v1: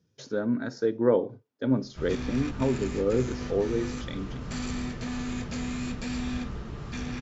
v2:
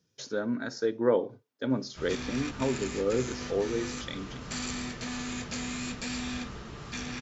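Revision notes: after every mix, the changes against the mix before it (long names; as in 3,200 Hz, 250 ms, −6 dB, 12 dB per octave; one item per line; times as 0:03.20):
master: add spectral tilt +2 dB per octave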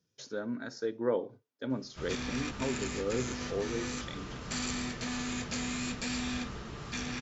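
speech −5.5 dB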